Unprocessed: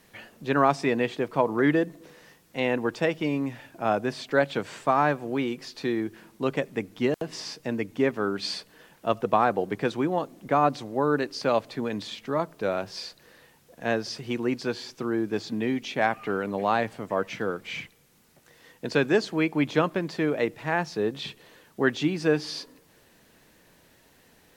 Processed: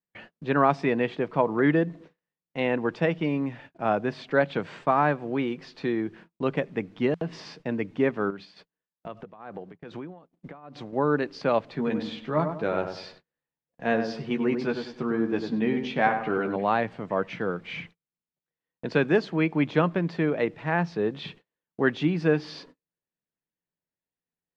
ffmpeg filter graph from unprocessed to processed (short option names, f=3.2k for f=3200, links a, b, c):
-filter_complex "[0:a]asettb=1/sr,asplit=3[a][b][c];[a]atrim=end=8.304[d];[b]atrim=start=8.3:end=10.93,asetpts=PTS-STARTPTS,afade=t=in:d=0.004:c=qsin,afade=t=out:st=2.626:d=0.004:c=qsin,acompressor=threshold=-32dB:ratio=10:attack=3.2:release=140:knee=1:detection=peak,tremolo=f=2.4:d=0.73[e];[c]atrim=start=10.926[f];[d][e]acrossfade=d=0.004:c1=hsin:c2=qsin[g];[g][f]acrossfade=d=0.004:c1=qsin:c2=hsin,asettb=1/sr,asplit=3[h][i][j];[h]atrim=end=11.754[k];[i]atrim=start=11.75:end=16.56,asetpts=PTS-STARTPTS,afade=t=in:d=0.004:c=qsin,afade=t=out:st=4.806:d=0.004:c=qsin,asplit=2[l][m];[m]adelay=13,volume=-6.5dB[n];[l][n]amix=inputs=2:normalize=0,atrim=end_sample=212121,asplit=2[o][p];[p]adelay=97,lowpass=f=1.4k:p=1,volume=-6dB,asplit=2[q][r];[r]adelay=97,lowpass=f=1.4k:p=1,volume=0.39,asplit=2[s][t];[t]adelay=97,lowpass=f=1.4k:p=1,volume=0.39,asplit=2[u][v];[v]adelay=97,lowpass=f=1.4k:p=1,volume=0.39,asplit=2[w][x];[x]adelay=97,lowpass=f=1.4k:p=1,volume=0.39[y];[o][q][s][u][w][y]amix=inputs=6:normalize=0,atrim=end_sample=212121[z];[j]atrim=start=16.556[aa];[k][z]acrossfade=d=0.004:c1=hsin:c2=qsin[ab];[ab][aa]acrossfade=d=0.004:c1=qsin:c2=hsin,agate=range=-38dB:threshold=-46dB:ratio=16:detection=peak,lowpass=3.2k,equalizer=f=170:w=6.1:g=8"